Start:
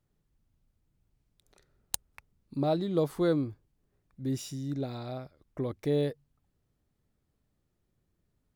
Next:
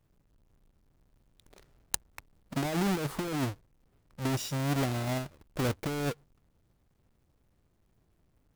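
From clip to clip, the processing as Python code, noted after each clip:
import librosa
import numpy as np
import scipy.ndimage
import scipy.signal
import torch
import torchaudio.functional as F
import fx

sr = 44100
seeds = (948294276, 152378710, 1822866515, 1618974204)

y = fx.halfwave_hold(x, sr)
y = fx.over_compress(y, sr, threshold_db=-28.0, ratio=-1.0)
y = F.gain(torch.from_numpy(y), -1.5).numpy()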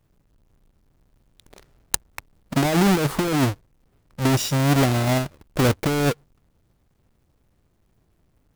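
y = fx.leveller(x, sr, passes=1)
y = F.gain(torch.from_numpy(y), 7.5).numpy()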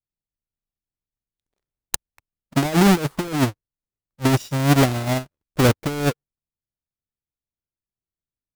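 y = fx.upward_expand(x, sr, threshold_db=-41.0, expansion=2.5)
y = F.gain(torch.from_numpy(y), 4.5).numpy()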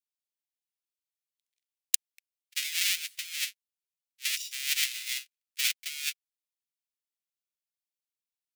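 y = scipy.signal.sosfilt(scipy.signal.butter(6, 2200.0, 'highpass', fs=sr, output='sos'), x)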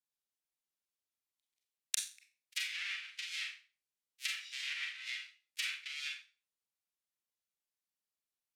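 y = fx.env_lowpass_down(x, sr, base_hz=1700.0, full_db=-28.0)
y = fx.rev_schroeder(y, sr, rt60_s=0.34, comb_ms=29, drr_db=1.0)
y = F.gain(torch.from_numpy(y), -3.5).numpy()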